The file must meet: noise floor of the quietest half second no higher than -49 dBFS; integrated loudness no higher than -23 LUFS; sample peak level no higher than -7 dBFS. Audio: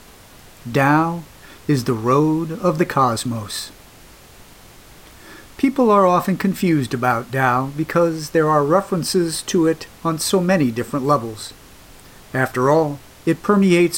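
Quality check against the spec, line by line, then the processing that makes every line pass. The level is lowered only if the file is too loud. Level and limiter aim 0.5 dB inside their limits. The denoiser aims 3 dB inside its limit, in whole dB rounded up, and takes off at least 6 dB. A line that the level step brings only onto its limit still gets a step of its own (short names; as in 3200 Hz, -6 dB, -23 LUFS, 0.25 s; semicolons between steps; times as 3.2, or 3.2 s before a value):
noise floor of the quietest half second -44 dBFS: fail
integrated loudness -18.5 LUFS: fail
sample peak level -2.5 dBFS: fail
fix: denoiser 6 dB, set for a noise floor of -44 dBFS; gain -5 dB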